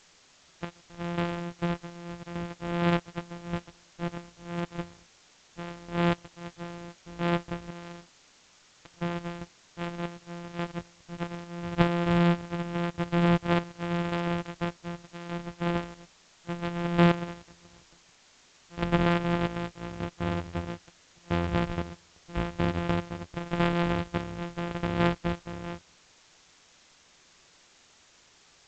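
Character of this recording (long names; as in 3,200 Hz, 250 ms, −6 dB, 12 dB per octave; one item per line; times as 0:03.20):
a buzz of ramps at a fixed pitch in blocks of 256 samples
chopped level 0.85 Hz, depth 65%, duty 55%
a quantiser's noise floor 10 bits, dither triangular
G.722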